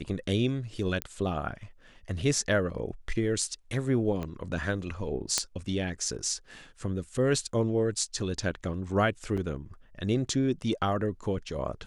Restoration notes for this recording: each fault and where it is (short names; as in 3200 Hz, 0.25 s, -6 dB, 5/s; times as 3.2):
1.02 pop -14 dBFS
4.23 pop -22 dBFS
5.38 pop -9 dBFS
9.37–9.38 gap 6 ms